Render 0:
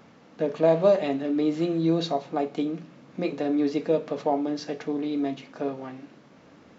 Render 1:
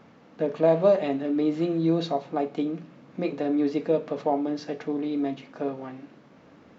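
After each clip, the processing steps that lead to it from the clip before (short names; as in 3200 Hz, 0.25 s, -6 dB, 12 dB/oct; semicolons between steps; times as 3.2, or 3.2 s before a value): high shelf 4800 Hz -8.5 dB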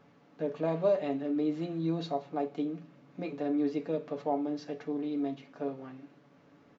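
comb 7 ms, depth 49%; gain -8.5 dB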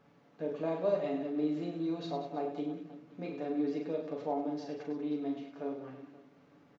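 reverse bouncing-ball echo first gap 40 ms, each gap 1.5×, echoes 5; gain -4.5 dB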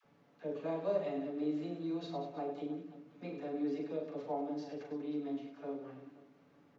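dispersion lows, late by 46 ms, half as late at 660 Hz; gain -3.5 dB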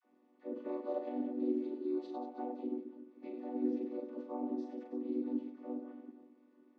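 chord vocoder minor triad, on B3; gain +1 dB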